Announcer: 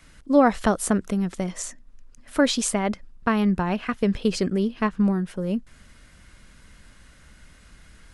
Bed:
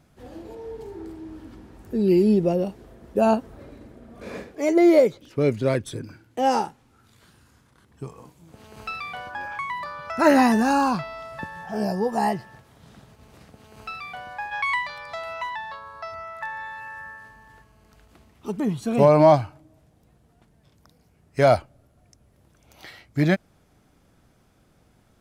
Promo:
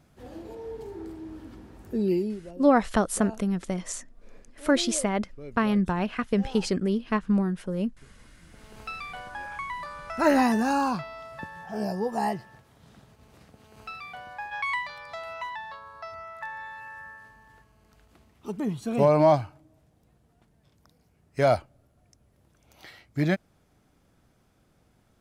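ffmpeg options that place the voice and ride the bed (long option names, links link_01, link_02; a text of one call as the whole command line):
ffmpeg -i stem1.wav -i stem2.wav -filter_complex "[0:a]adelay=2300,volume=-2.5dB[link_01];[1:a]volume=15.5dB,afade=type=out:start_time=1.87:duration=0.52:silence=0.1,afade=type=in:start_time=8.16:duration=0.52:silence=0.141254[link_02];[link_01][link_02]amix=inputs=2:normalize=0" out.wav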